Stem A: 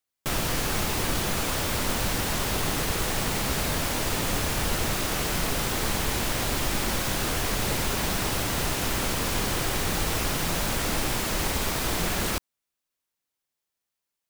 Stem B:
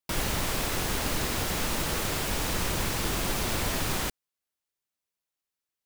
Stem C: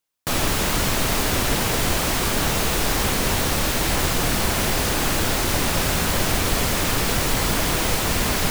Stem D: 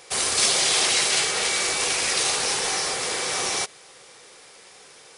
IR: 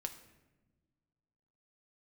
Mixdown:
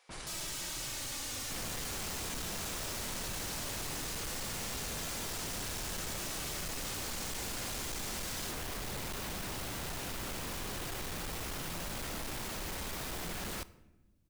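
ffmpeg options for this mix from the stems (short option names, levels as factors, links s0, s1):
-filter_complex "[0:a]adelay=1250,volume=0.75,asplit=2[s0][s1];[s1]volume=0.168[s2];[1:a]lowpass=2200,volume=0.178[s3];[2:a]equalizer=f=6800:w=0.47:g=13.5,asplit=2[s4][s5];[s5]adelay=2.6,afreqshift=-0.35[s6];[s4][s6]amix=inputs=2:normalize=1,volume=0.266[s7];[3:a]highpass=730,highshelf=f=6400:g=-11,volume=0.158[s8];[4:a]atrim=start_sample=2205[s9];[s2][s9]afir=irnorm=-1:irlink=0[s10];[s0][s3][s7][s8][s10]amix=inputs=5:normalize=0,asoftclip=type=tanh:threshold=0.0282,alimiter=level_in=4.22:limit=0.0631:level=0:latency=1:release=25,volume=0.237"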